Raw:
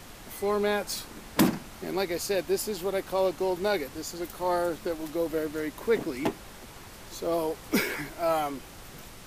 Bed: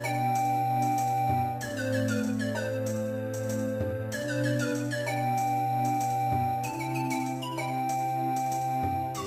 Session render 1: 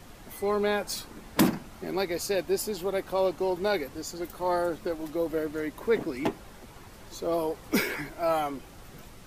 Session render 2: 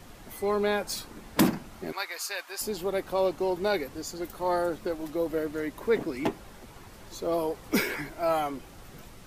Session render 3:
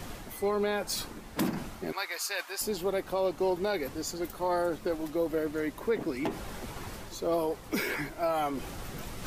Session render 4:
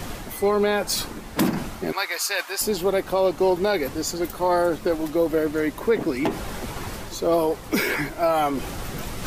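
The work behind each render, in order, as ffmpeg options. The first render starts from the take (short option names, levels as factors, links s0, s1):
-af "afftdn=nr=6:nf=-47"
-filter_complex "[0:a]asettb=1/sr,asplit=3[s0][s1][s2];[s0]atrim=end=1.924[s3];[s1]atrim=start=1.92:end=2.61,asetpts=PTS-STARTPTS,afade=t=in:d=0.004:c=qsin,afade=t=out:st=0.686:d=0.004:c=qsin,highpass=f=1200:t=q:w=1.6[s4];[s2]atrim=start=2.606[s5];[s3][s4]acrossfade=d=0.004:c1=hsin:c2=qsin[s6];[s6][s5]acrossfade=d=0.004:c1=qsin:c2=hsin"
-af "areverse,acompressor=mode=upward:threshold=0.0316:ratio=2.5,areverse,alimiter=limit=0.1:level=0:latency=1:release=118"
-af "volume=2.66"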